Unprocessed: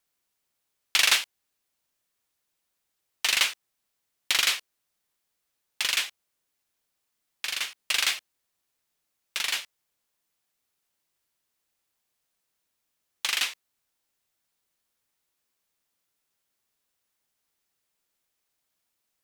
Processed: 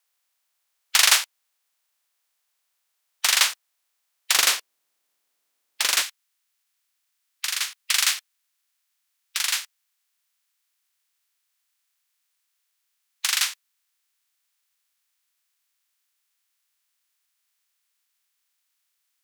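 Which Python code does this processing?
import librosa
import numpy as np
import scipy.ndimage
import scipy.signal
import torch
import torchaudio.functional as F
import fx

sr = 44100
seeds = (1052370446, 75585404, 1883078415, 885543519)

y = fx.spec_clip(x, sr, under_db=13)
y = fx.highpass(y, sr, hz=fx.steps((0.0, 750.0), (4.36, 280.0), (6.02, 1300.0)), slope=12)
y = y * librosa.db_to_amplitude(4.5)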